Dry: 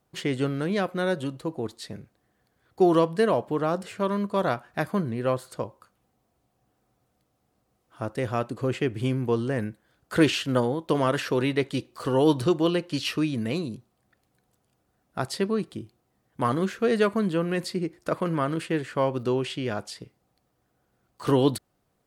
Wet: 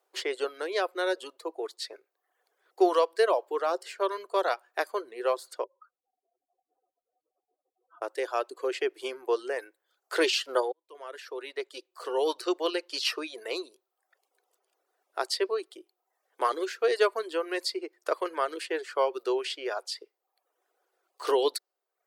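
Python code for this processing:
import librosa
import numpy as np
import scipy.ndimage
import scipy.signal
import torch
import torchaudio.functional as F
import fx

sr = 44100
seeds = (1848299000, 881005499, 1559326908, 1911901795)

y = fx.spec_expand(x, sr, power=2.7, at=(5.64, 8.02))
y = fx.edit(y, sr, fx.fade_in_span(start_s=10.72, length_s=2.2), tone=tone)
y = fx.dynamic_eq(y, sr, hz=4800.0, q=2.2, threshold_db=-54.0, ratio=4.0, max_db=7)
y = scipy.signal.sosfilt(scipy.signal.ellip(4, 1.0, 50, 380.0, 'highpass', fs=sr, output='sos'), y)
y = fx.dereverb_blind(y, sr, rt60_s=0.66)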